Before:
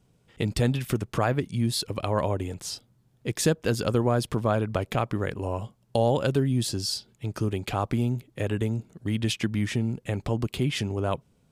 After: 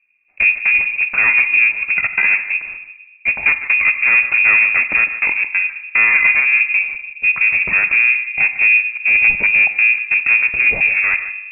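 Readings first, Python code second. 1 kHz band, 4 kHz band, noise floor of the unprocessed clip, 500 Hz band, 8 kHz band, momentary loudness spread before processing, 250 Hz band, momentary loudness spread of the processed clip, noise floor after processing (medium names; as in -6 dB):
+1.5 dB, no reading, -65 dBFS, under -10 dB, under -40 dB, 8 LU, under -10 dB, 6 LU, -43 dBFS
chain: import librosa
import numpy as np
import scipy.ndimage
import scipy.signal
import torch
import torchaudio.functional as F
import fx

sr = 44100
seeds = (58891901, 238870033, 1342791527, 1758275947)

y = fx.highpass(x, sr, hz=59.0, slope=6)
y = fx.low_shelf(y, sr, hz=460.0, db=12.0)
y = fx.notch(y, sr, hz=380.0, q=12.0)
y = fx.leveller(y, sr, passes=3)
y = 10.0 ** (-4.5 / 20.0) * np.tanh(y / 10.0 ** (-4.5 / 20.0))
y = fx.step_gate(y, sr, bpm=138, pattern='xxxxx.xx.xxxxx', floor_db=-60.0, edge_ms=4.5)
y = y + 10.0 ** (-13.5 / 20.0) * np.pad(y, (int(151 * sr / 1000.0), 0))[:len(y)]
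y = fx.rev_fdn(y, sr, rt60_s=1.1, lf_ratio=1.45, hf_ratio=0.55, size_ms=11.0, drr_db=10.0)
y = fx.freq_invert(y, sr, carrier_hz=2600)
y = F.gain(torch.from_numpy(y), -3.0).numpy()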